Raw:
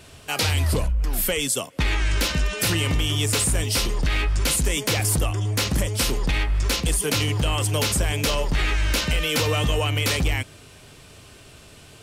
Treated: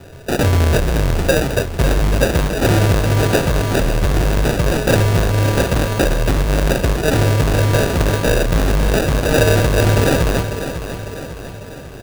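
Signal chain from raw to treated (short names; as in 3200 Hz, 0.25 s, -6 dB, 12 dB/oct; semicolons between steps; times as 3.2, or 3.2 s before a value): half-waves squared off; graphic EQ 125/250/500/2000/8000 Hz +6/-6/+8/+10/-6 dB; sample-and-hold 41×; feedback echo 0.55 s, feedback 53%, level -10 dB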